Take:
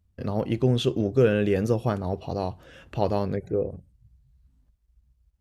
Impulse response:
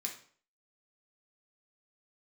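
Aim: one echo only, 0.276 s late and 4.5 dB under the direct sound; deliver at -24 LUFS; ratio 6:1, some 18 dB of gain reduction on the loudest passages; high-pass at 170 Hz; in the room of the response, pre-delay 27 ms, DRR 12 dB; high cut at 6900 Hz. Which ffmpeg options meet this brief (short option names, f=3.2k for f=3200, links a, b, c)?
-filter_complex "[0:a]highpass=170,lowpass=6.9k,acompressor=threshold=-36dB:ratio=6,aecho=1:1:276:0.596,asplit=2[a][b];[1:a]atrim=start_sample=2205,adelay=27[c];[b][c]afir=irnorm=-1:irlink=0,volume=-11.5dB[d];[a][d]amix=inputs=2:normalize=0,volume=15.5dB"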